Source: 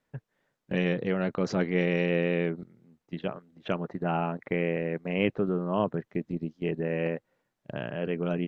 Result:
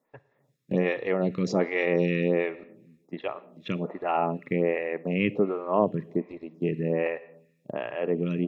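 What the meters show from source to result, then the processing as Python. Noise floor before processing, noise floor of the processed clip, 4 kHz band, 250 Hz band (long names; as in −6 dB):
−82 dBFS, −70 dBFS, −1.5 dB, +1.0 dB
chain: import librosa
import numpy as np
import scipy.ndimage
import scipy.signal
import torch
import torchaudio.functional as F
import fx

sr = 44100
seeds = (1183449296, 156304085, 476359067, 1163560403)

y = fx.notch_comb(x, sr, f0_hz=1500.0)
y = fx.rev_schroeder(y, sr, rt60_s=0.98, comb_ms=38, drr_db=17.0)
y = fx.stagger_phaser(y, sr, hz=1.3)
y = F.gain(torch.from_numpy(y), 6.0).numpy()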